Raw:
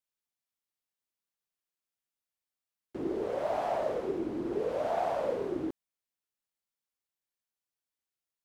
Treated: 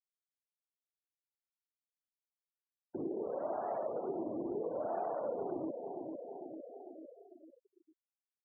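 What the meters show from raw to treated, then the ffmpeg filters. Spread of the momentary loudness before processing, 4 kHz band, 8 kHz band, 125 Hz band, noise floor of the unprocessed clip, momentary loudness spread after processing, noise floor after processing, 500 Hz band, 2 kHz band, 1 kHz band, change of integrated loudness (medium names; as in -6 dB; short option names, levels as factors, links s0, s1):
7 LU, under -30 dB, no reading, -7.5 dB, under -85 dBFS, 14 LU, under -85 dBFS, -5.0 dB, -14.5 dB, -5.5 dB, -6.5 dB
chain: -filter_complex "[0:a]acrossover=split=120[s0][s1];[s1]acontrast=53[s2];[s0][s2]amix=inputs=2:normalize=0,aecho=1:1:449|898|1347|1796|2245:0.335|0.151|0.0678|0.0305|0.0137,acompressor=threshold=0.00447:ratio=2,afftfilt=real='re*gte(hypot(re,im),0.00708)':imag='im*gte(hypot(re,im),0.00708)':win_size=1024:overlap=0.75,volume=1.12"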